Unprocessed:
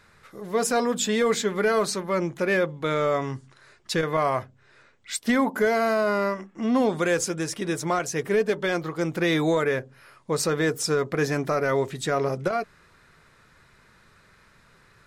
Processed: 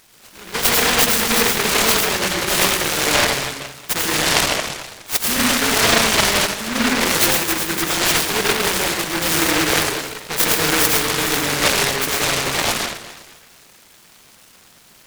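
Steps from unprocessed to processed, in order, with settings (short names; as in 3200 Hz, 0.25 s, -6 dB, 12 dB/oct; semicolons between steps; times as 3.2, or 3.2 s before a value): tilt +3.5 dB/oct; plate-style reverb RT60 1.4 s, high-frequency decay 0.3×, pre-delay 80 ms, DRR -4 dB; noise-modulated delay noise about 1500 Hz, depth 0.4 ms; gain +2 dB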